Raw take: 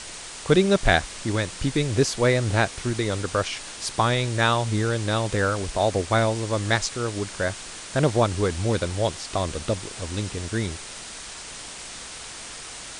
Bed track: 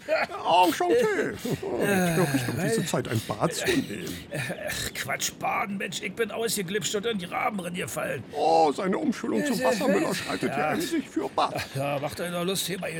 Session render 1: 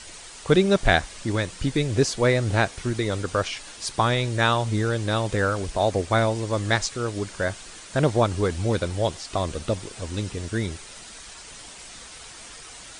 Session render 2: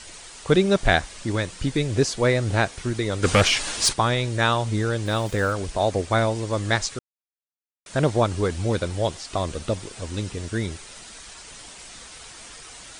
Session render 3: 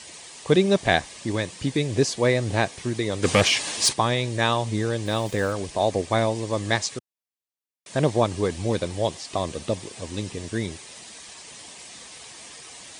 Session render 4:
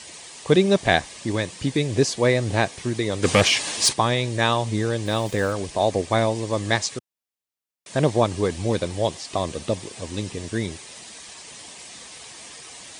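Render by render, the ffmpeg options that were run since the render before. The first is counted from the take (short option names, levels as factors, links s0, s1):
-af "afftdn=nr=7:nf=-39"
-filter_complex "[0:a]asplit=3[s0][s1][s2];[s0]afade=t=out:st=3.22:d=0.02[s3];[s1]aeval=exprs='0.299*sin(PI/2*2.51*val(0)/0.299)':c=same,afade=t=in:st=3.22:d=0.02,afade=t=out:st=3.92:d=0.02[s4];[s2]afade=t=in:st=3.92:d=0.02[s5];[s3][s4][s5]amix=inputs=3:normalize=0,asplit=3[s6][s7][s8];[s6]afade=t=out:st=5.05:d=0.02[s9];[s7]aeval=exprs='val(0)*gte(abs(val(0)),0.0106)':c=same,afade=t=in:st=5.05:d=0.02,afade=t=out:st=5.51:d=0.02[s10];[s8]afade=t=in:st=5.51:d=0.02[s11];[s9][s10][s11]amix=inputs=3:normalize=0,asplit=3[s12][s13][s14];[s12]atrim=end=6.99,asetpts=PTS-STARTPTS,afade=t=out:st=6.986:d=0.004:c=hsin[s15];[s13]atrim=start=6.99:end=7.86,asetpts=PTS-STARTPTS,volume=0[s16];[s14]atrim=start=7.86,asetpts=PTS-STARTPTS,afade=t=in:d=0.004:c=hsin[s17];[s15][s16][s17]concat=n=3:v=0:a=1"
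-af "highpass=110,equalizer=f=1400:t=o:w=0.2:g=-11.5"
-af "volume=1.19"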